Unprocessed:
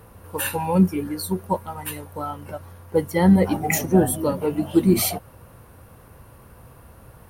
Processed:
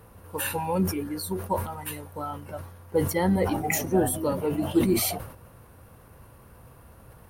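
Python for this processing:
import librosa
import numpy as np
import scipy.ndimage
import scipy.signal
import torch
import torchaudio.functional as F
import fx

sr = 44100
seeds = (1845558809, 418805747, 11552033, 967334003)

y = fx.dynamic_eq(x, sr, hz=170.0, q=1.8, threshold_db=-31.0, ratio=4.0, max_db=-7)
y = fx.sustainer(y, sr, db_per_s=83.0)
y = F.gain(torch.from_numpy(y), -4.0).numpy()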